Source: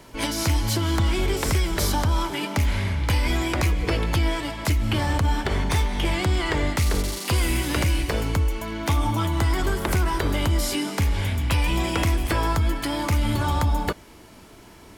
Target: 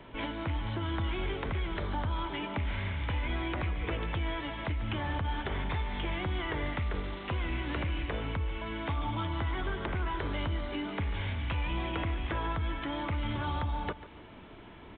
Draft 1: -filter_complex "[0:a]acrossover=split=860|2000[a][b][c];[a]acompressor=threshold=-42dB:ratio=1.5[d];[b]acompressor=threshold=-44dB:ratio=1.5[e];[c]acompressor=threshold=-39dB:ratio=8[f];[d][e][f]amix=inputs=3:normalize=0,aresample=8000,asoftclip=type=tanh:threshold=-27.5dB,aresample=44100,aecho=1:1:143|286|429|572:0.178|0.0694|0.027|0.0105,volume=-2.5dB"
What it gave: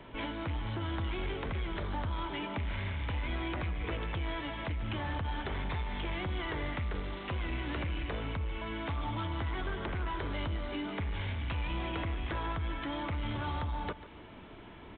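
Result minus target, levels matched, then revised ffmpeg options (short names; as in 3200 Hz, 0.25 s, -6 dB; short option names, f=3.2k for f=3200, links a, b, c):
soft clip: distortion +11 dB
-filter_complex "[0:a]acrossover=split=860|2000[a][b][c];[a]acompressor=threshold=-42dB:ratio=1.5[d];[b]acompressor=threshold=-44dB:ratio=1.5[e];[c]acompressor=threshold=-39dB:ratio=8[f];[d][e][f]amix=inputs=3:normalize=0,aresample=8000,asoftclip=type=tanh:threshold=-20dB,aresample=44100,aecho=1:1:143|286|429|572:0.178|0.0694|0.027|0.0105,volume=-2.5dB"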